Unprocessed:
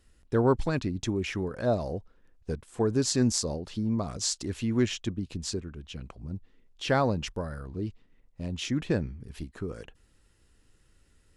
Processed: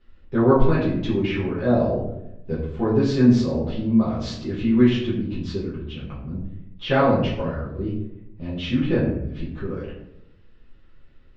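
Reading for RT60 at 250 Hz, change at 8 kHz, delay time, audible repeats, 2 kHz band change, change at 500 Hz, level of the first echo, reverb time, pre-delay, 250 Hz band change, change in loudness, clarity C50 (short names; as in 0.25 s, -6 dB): 1.1 s, under -15 dB, none, none, +5.5 dB, +7.5 dB, none, 0.85 s, 5 ms, +10.0 dB, +7.5 dB, 3.5 dB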